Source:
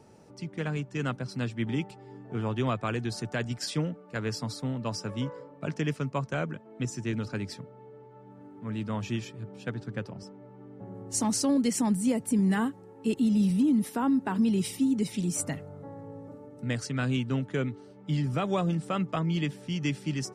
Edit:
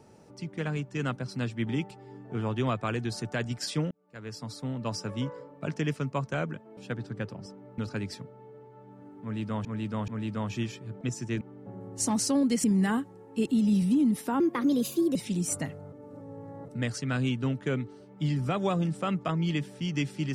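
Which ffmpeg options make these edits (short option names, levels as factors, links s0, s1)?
-filter_complex "[0:a]asplit=13[s0][s1][s2][s3][s4][s5][s6][s7][s8][s9][s10][s11][s12];[s0]atrim=end=3.91,asetpts=PTS-STARTPTS,afade=t=out:st=3.906:d=0.004:c=hsin[s13];[s1]atrim=start=3.91:end=6.772,asetpts=PTS-STARTPTS,afade=t=in:d=0.97[s14];[s2]atrim=start=9.538:end=10.552[s15];[s3]atrim=start=7.168:end=9.042[s16];[s4]atrim=start=8.608:end=9.042[s17];[s5]atrim=start=8.608:end=9.542[s18];[s6]atrim=start=6.768:end=7.172[s19];[s7]atrim=start=10.548:end=11.782[s20];[s8]atrim=start=12.318:end=14.084[s21];[s9]atrim=start=14.08:end=15.03,asetpts=PTS-STARTPTS,asetrate=55566,aresample=44100[s22];[s10]atrim=start=15.026:end=15.802[s23];[s11]atrim=start=15.798:end=16.562,asetpts=PTS-STARTPTS,areverse[s24];[s12]atrim=start=16.558[s25];[s13][s14]concat=n=2:v=0:a=1[s26];[s26][s15]acrossfade=d=0.004:c1=hsin:c2=hsin[s27];[s27][s16]acrossfade=d=0.004:c1=hsin:c2=hsin[s28];[s28][s17]acrossfade=d=0.004:c1=hsin:c2=hsin[s29];[s29][s18]acrossfade=d=0.004:c1=hsin:c2=hsin[s30];[s30][s19]acrossfade=d=0.004:c1=hsin:c2=hsin[s31];[s31][s20]acrossfade=d=0.004:c1=hsin:c2=hsin[s32];[s32][s21]acrossfade=d=0.004:c1=hsin:c2=hsin[s33];[s33][s22]acrossfade=d=0.004:c1=hsin:c2=hsin[s34];[s34][s23]acrossfade=d=0.004:c1=hsin:c2=hsin[s35];[s35][s24]acrossfade=d=0.004:c1=hsin:c2=hsin[s36];[s36][s25]acrossfade=d=0.004:c1=hsin:c2=hsin"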